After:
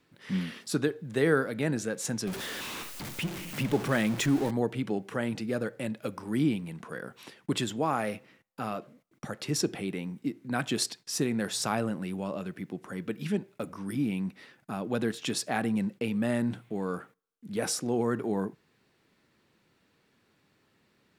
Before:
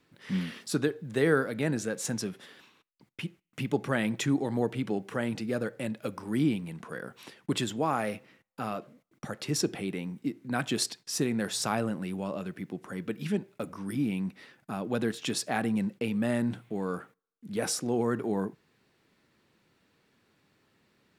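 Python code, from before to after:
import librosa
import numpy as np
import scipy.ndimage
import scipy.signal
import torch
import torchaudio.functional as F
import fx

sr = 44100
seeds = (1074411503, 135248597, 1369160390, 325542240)

y = fx.zero_step(x, sr, step_db=-32.5, at=(2.27, 4.51))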